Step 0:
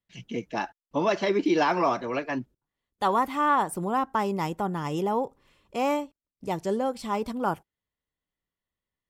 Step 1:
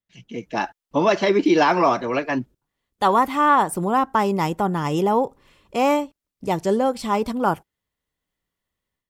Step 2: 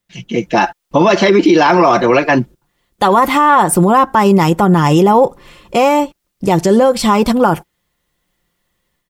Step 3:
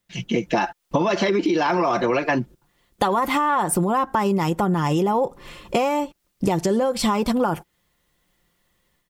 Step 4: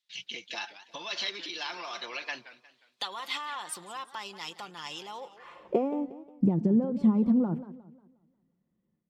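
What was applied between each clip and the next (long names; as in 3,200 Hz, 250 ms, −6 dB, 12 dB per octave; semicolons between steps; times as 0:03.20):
automatic gain control gain up to 11 dB; level −3.5 dB
comb filter 5.7 ms, depth 40%; boost into a limiter +15.5 dB; level −1 dB
downward compressor 6 to 1, threshold −18 dBFS, peak gain reduction 11.5 dB
band-pass filter sweep 3,900 Hz → 210 Hz, 0:05.17–0:05.91; feedback echo with a swinging delay time 179 ms, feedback 39%, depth 213 cents, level −15 dB; level +1 dB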